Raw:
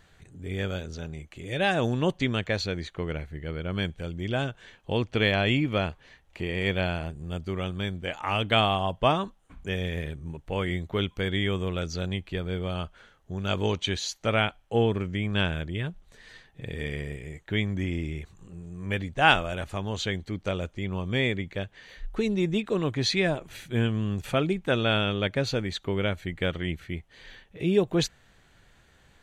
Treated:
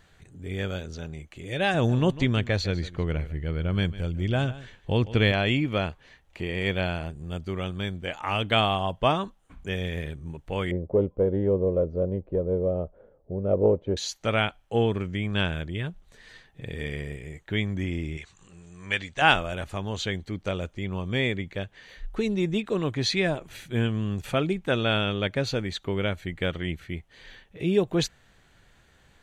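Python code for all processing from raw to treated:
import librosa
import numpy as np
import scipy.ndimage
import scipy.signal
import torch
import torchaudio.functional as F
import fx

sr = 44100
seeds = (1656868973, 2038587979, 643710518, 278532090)

y = fx.chain(x, sr, fx.low_shelf(hz=150.0, db=9.5),
    fx.echo_single(ms=150, db=-16.5), at=(1.74, 5.32))
y = fx.chain(y, sr, fx.lowpass_res(hz=530.0, q=4.5),
    fx.doppler_dist(depth_ms=0.11), at=(10.71, 13.97))
y = fx.chain(y, sr, fx.lowpass(hz=8200.0, slope=24),
    fx.tilt_shelf(db=-8.5, hz=820.0), at=(18.17, 19.22))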